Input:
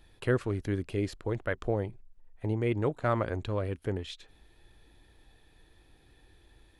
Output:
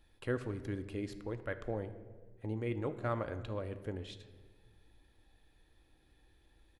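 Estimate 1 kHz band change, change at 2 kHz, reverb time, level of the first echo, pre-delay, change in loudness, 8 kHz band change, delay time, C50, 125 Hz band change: -7.5 dB, -7.5 dB, 1.4 s, -21.5 dB, 4 ms, -7.5 dB, no reading, 73 ms, 12.5 dB, -8.0 dB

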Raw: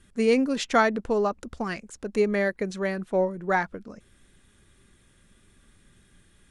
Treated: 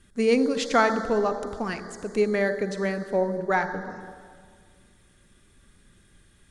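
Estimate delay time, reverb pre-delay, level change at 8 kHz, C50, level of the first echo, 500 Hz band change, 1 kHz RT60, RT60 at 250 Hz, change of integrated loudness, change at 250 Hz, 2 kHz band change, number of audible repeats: no echo, 36 ms, +1.0 dB, 9.0 dB, no echo, +1.0 dB, 1.8 s, 2.1 s, +0.5 dB, +0.5 dB, +0.5 dB, no echo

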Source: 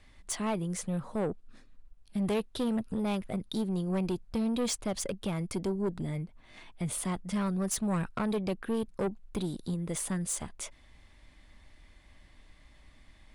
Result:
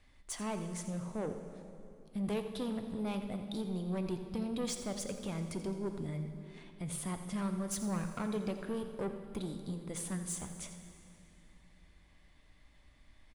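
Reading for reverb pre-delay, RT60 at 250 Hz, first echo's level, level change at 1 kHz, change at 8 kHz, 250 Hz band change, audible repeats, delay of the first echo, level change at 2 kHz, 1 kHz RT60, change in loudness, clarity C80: 4 ms, 3.5 s, -13.0 dB, -5.5 dB, -5.5 dB, -5.5 dB, 1, 85 ms, -5.5 dB, 2.6 s, -5.5 dB, 7.5 dB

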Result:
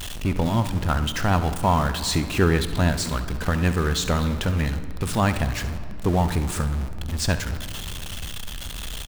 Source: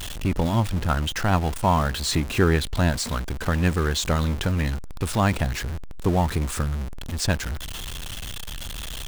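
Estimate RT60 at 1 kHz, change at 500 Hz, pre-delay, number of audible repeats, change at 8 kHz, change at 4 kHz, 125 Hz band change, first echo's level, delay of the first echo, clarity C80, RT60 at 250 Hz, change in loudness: 2.4 s, +0.5 dB, 4 ms, 1, +0.5 dB, +0.5 dB, +0.5 dB, -14.5 dB, 68 ms, 13.5 dB, 4.2 s, +0.5 dB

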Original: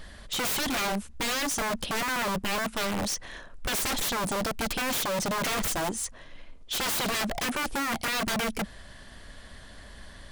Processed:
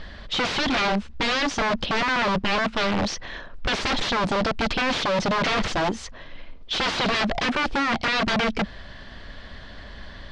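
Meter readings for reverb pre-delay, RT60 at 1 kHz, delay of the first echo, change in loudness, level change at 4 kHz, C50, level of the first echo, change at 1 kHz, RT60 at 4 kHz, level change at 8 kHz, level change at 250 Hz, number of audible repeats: no reverb, no reverb, no echo, +5.0 dB, +5.5 dB, no reverb, no echo, +6.5 dB, no reverb, -6.5 dB, +6.5 dB, no echo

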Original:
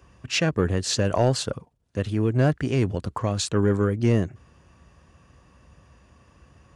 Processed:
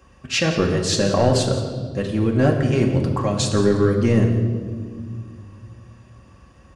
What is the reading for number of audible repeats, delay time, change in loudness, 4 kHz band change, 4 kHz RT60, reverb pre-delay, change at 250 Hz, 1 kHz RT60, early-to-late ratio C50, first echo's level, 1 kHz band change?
1, 171 ms, +4.5 dB, +4.0 dB, 1.4 s, 4 ms, +5.5 dB, 1.4 s, 5.5 dB, -14.5 dB, +4.5 dB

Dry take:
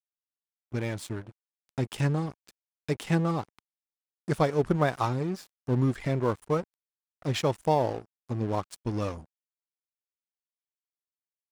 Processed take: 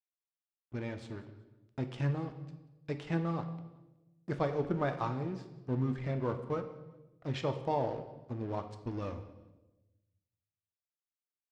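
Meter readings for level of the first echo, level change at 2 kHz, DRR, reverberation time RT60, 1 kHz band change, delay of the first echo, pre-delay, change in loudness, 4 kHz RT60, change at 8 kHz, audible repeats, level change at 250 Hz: -22.5 dB, -8.0 dB, 7.0 dB, 1.1 s, -7.0 dB, 186 ms, 3 ms, -7.0 dB, 0.90 s, under -15 dB, 2, -6.5 dB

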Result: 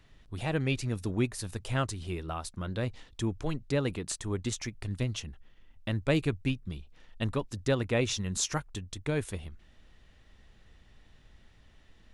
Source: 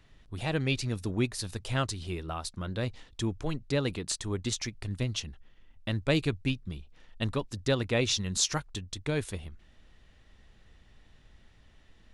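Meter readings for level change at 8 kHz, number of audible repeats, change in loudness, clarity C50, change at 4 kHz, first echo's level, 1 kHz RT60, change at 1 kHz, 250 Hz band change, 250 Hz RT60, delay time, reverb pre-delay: -2.5 dB, no echo, -1.0 dB, no reverb, -5.0 dB, no echo, no reverb, 0.0 dB, 0.0 dB, no reverb, no echo, no reverb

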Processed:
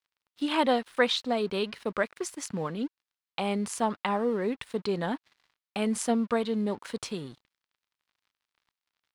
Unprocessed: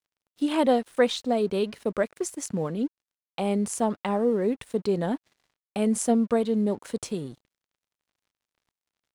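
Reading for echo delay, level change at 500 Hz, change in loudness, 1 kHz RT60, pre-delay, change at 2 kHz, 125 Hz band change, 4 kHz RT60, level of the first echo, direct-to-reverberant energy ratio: no echo, -4.5 dB, -3.5 dB, no reverb, no reverb, +3.5 dB, -4.5 dB, no reverb, no echo, no reverb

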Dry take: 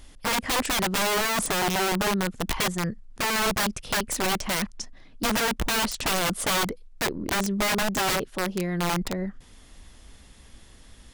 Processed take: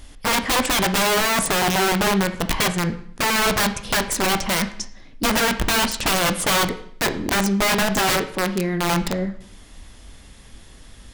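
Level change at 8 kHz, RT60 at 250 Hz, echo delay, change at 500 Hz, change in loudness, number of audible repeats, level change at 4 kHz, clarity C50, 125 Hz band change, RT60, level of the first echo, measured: +5.0 dB, 0.60 s, no echo, +5.5 dB, +5.5 dB, no echo, +5.5 dB, 12.5 dB, +5.5 dB, 0.60 s, no echo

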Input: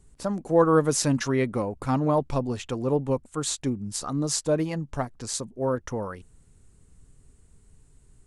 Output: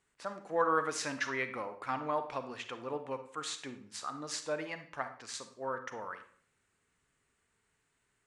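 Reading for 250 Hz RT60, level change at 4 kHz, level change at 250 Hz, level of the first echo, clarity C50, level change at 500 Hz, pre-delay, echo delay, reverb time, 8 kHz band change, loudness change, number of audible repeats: 0.65 s, -7.5 dB, -17.5 dB, no echo, 10.0 dB, -12.0 dB, 35 ms, no echo, 0.50 s, -13.0 dB, -11.0 dB, no echo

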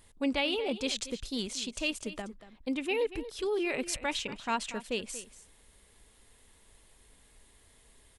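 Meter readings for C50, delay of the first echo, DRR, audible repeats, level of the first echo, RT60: no reverb, 234 ms, no reverb, 1, -14.5 dB, no reverb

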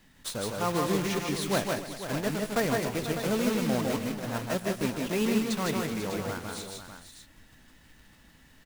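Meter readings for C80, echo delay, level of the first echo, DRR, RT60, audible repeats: no reverb, 155 ms, -3.5 dB, no reverb, no reverb, 5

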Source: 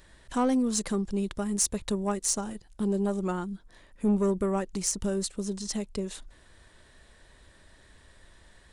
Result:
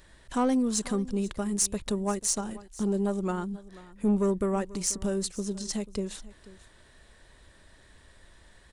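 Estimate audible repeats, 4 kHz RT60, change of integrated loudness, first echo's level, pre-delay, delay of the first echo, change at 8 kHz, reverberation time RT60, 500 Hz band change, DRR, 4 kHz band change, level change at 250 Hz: 1, no reverb, 0.0 dB, -19.0 dB, no reverb, 488 ms, 0.0 dB, no reverb, 0.0 dB, no reverb, 0.0 dB, 0.0 dB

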